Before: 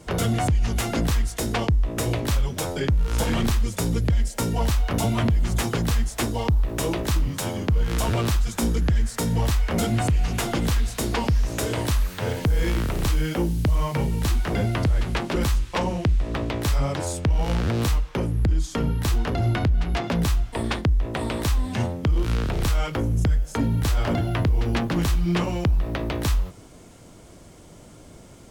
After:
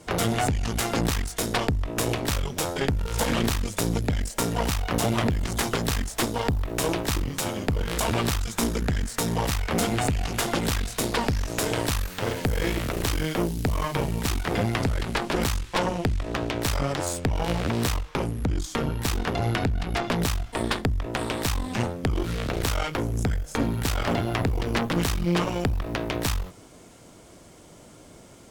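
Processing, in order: bass shelf 160 Hz -7.5 dB; Chebyshev shaper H 4 -11 dB, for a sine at -14 dBFS

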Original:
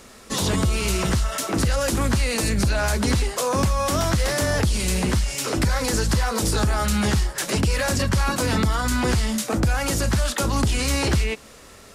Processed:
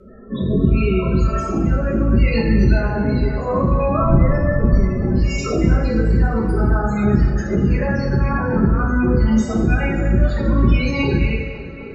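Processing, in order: 4.00–5.06 s: octave divider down 1 oct, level +1 dB; Bessel low-pass 8.1 kHz, order 8; in parallel at 0 dB: compression, threshold -35 dBFS, peak gain reduction 19.5 dB; on the sum: loudest bins only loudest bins 16; rotary cabinet horn 0.7 Hz; on a send: tape echo 258 ms, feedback 73%, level -11.5 dB, low-pass 3.3 kHz; on the sum: two-slope reverb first 0.74 s, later 2.7 s, from -19 dB, DRR -5 dB

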